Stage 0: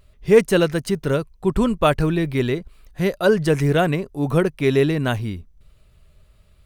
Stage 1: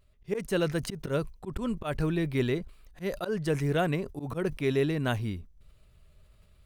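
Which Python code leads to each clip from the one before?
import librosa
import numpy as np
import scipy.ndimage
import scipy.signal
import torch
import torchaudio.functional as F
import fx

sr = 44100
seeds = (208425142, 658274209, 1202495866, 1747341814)

y = fx.rider(x, sr, range_db=10, speed_s=0.5)
y = fx.auto_swell(y, sr, attack_ms=119.0)
y = fx.sustainer(y, sr, db_per_s=150.0)
y = y * 10.0 ** (-8.5 / 20.0)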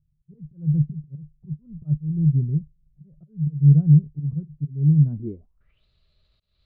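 y = fx.auto_swell(x, sr, attack_ms=229.0)
y = fx.filter_sweep_lowpass(y, sr, from_hz=150.0, to_hz=4100.0, start_s=5.07, end_s=5.85, q=7.7)
y = fx.upward_expand(y, sr, threshold_db=-37.0, expansion=1.5)
y = y * 10.0 ** (4.0 / 20.0)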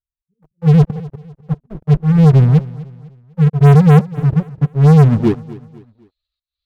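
y = fx.bin_expand(x, sr, power=1.5)
y = fx.leveller(y, sr, passes=5)
y = fx.echo_feedback(y, sr, ms=251, feedback_pct=39, wet_db=-19)
y = y * 10.0 ** (2.5 / 20.0)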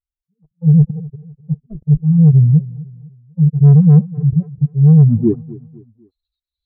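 y = fx.spec_expand(x, sr, power=1.9)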